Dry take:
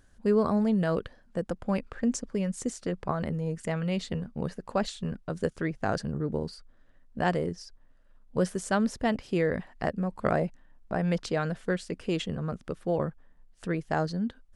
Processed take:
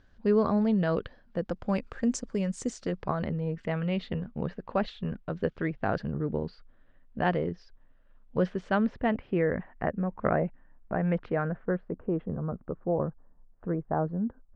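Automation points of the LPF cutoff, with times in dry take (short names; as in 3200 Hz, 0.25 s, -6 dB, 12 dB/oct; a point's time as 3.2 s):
LPF 24 dB/oct
1.39 s 4700 Hz
1.86 s 8000 Hz
2.59 s 8000 Hz
3.51 s 3500 Hz
8.62 s 3500 Hz
9.43 s 2200 Hz
11.25 s 2200 Hz
11.94 s 1200 Hz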